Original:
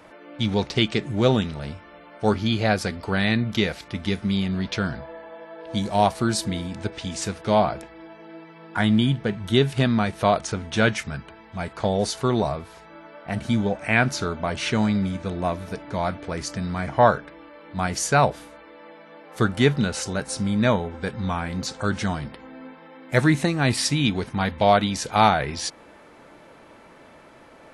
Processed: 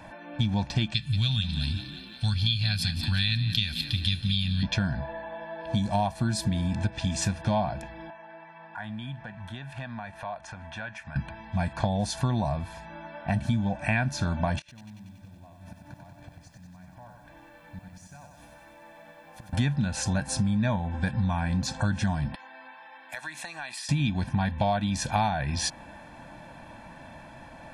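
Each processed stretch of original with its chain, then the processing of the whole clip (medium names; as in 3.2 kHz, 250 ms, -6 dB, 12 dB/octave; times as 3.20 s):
0.94–4.63 s: FFT filter 110 Hz 0 dB, 440 Hz -25 dB, 890 Hz -18 dB, 1.3 kHz -6 dB, 1.9 kHz -5 dB, 2.9 kHz +8 dB, 4.2 kHz +14 dB, 6.2 kHz -3 dB, 13 kHz +13 dB + frequency-shifting echo 179 ms, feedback 62%, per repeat +59 Hz, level -14.5 dB
8.10–11.16 s: three-band isolator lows -15 dB, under 600 Hz, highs -13 dB, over 2.3 kHz + compression 2.5:1, threshold -43 dBFS
14.59–19.53 s: inverted gate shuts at -21 dBFS, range -25 dB + compression 2.5:1, threshold -54 dBFS + bit-crushed delay 94 ms, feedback 80%, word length 11-bit, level -4.5 dB
22.35–23.89 s: high-pass 880 Hz + compression 5:1, threshold -37 dBFS
whole clip: tone controls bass +5 dB, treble -2 dB; comb 1.2 ms, depth 85%; compression 6:1, threshold -23 dBFS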